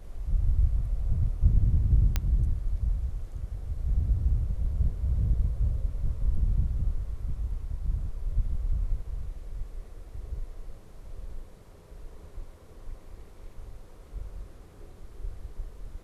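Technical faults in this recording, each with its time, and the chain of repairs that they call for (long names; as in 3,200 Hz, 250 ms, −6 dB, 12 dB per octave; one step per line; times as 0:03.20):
0:02.16: click −12 dBFS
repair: click removal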